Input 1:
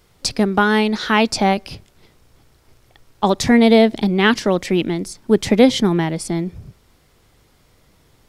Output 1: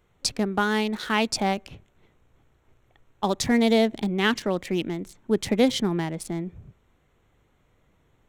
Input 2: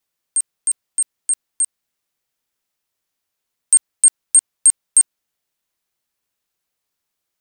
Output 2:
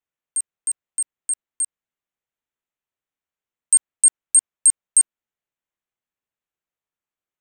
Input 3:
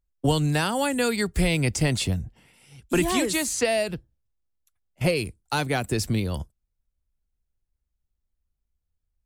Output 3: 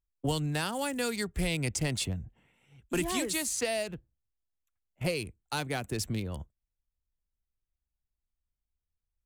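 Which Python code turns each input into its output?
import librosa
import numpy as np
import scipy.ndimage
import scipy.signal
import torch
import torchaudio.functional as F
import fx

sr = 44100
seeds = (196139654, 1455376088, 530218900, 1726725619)

y = fx.wiener(x, sr, points=9)
y = fx.high_shelf(y, sr, hz=3800.0, db=7.5)
y = y * 10.0 ** (-8.5 / 20.0)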